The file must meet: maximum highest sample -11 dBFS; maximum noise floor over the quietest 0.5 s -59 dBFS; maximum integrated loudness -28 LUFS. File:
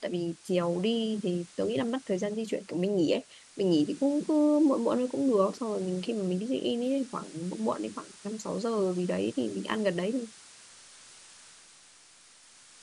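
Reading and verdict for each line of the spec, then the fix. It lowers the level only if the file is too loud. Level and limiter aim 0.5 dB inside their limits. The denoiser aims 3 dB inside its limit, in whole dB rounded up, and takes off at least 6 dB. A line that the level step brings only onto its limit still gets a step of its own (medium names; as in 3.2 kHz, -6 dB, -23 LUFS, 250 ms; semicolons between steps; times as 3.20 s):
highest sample -13.0 dBFS: pass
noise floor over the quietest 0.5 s -57 dBFS: fail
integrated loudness -30.0 LUFS: pass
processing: noise reduction 6 dB, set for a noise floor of -57 dBFS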